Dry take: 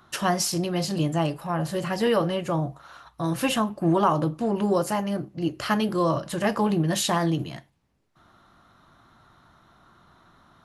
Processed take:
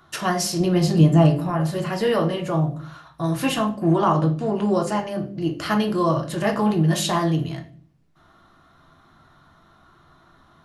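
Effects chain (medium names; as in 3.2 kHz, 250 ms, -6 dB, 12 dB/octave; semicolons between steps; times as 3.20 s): 0.60–1.50 s: bass shelf 490 Hz +8.5 dB; 3.94–5.08 s: low-pass 9.3 kHz 24 dB/octave; reverberation RT60 0.45 s, pre-delay 3 ms, DRR 3 dB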